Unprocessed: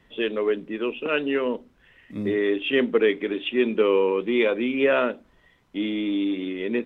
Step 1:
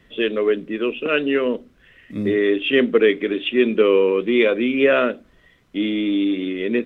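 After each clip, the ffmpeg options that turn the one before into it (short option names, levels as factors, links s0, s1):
-af "equalizer=f=890:w=3.6:g=-9.5,volume=1.78"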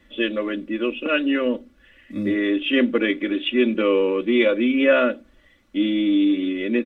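-af "aecho=1:1:3.5:0.89,volume=0.668"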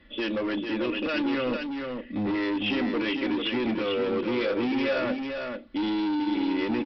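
-af "alimiter=limit=0.15:level=0:latency=1:release=42,aresample=11025,asoftclip=type=hard:threshold=0.0562,aresample=44100,aecho=1:1:445:0.531"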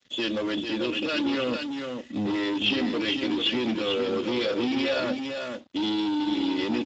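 -af "aeval=exprs='sgn(val(0))*max(abs(val(0))-0.002,0)':c=same,aexciter=amount=3.4:drive=4.2:freq=3100" -ar 16000 -c:a libspeex -b:a 17k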